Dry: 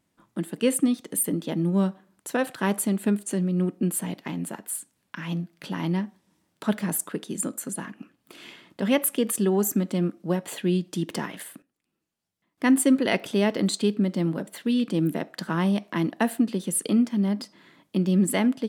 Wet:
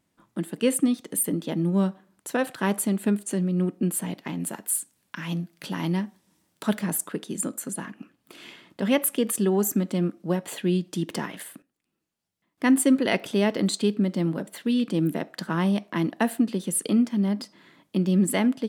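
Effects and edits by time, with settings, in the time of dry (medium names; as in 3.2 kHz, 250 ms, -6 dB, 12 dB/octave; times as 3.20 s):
4.40–6.79 s: treble shelf 4.7 kHz +7 dB
15.46–16.04 s: tape noise reduction on one side only decoder only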